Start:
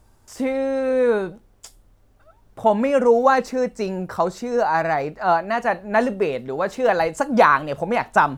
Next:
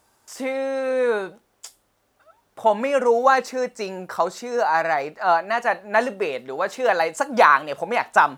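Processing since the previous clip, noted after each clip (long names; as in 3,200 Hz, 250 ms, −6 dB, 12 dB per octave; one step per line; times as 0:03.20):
high-pass filter 740 Hz 6 dB per octave
level +2.5 dB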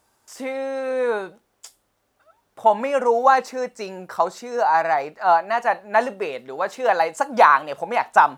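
dynamic equaliser 850 Hz, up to +6 dB, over −30 dBFS, Q 1.7
level −2.5 dB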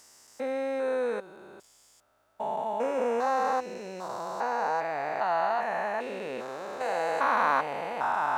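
spectrum averaged block by block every 400 ms
level −3 dB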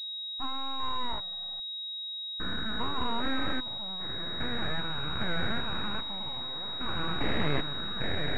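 noise reduction from a noise print of the clip's start 30 dB
full-wave rectification
switching amplifier with a slow clock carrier 3,800 Hz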